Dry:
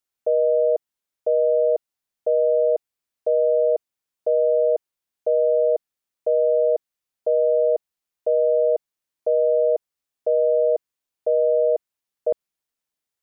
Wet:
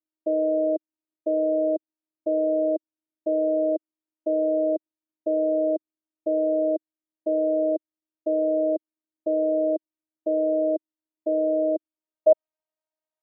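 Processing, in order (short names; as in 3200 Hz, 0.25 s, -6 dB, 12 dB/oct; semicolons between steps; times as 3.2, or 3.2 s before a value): robotiser 313 Hz; band-pass sweep 320 Hz -> 650 Hz, 11.85–12.38; gain +8.5 dB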